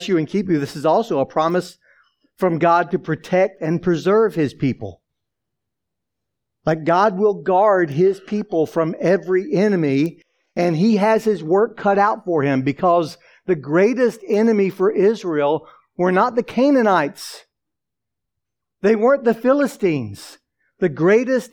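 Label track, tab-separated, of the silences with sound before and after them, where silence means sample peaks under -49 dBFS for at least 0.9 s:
4.960000	6.660000	silence
17.440000	18.830000	silence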